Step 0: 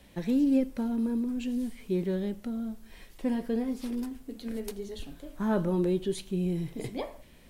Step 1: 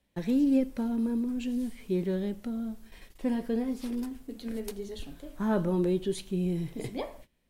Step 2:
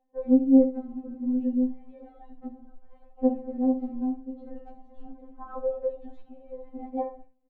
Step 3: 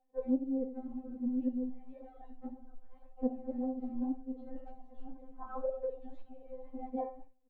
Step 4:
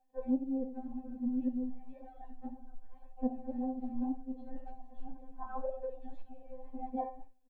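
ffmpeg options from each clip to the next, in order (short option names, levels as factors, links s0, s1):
-af "agate=range=0.112:threshold=0.00355:ratio=16:detection=peak"
-af "lowpass=f=720:t=q:w=4.7,aecho=1:1:63|78:0.211|0.126,afftfilt=real='re*3.46*eq(mod(b,12),0)':imag='im*3.46*eq(mod(b,12),0)':win_size=2048:overlap=0.75"
-af "acompressor=threshold=0.0447:ratio=4,flanger=delay=1.3:depth=7.9:regen=46:speed=1.9:shape=sinusoidal"
-af "aecho=1:1:1.2:0.53"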